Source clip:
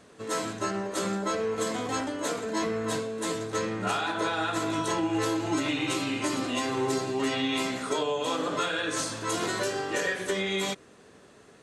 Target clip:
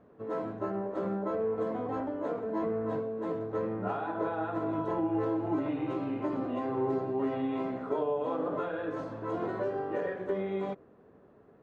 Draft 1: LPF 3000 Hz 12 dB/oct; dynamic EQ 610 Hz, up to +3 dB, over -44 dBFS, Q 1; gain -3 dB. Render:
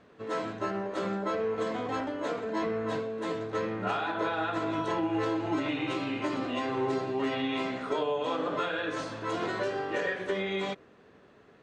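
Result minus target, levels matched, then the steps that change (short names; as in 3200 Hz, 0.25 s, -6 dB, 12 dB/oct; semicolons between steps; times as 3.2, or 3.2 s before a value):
4000 Hz band +16.5 dB
change: LPF 950 Hz 12 dB/oct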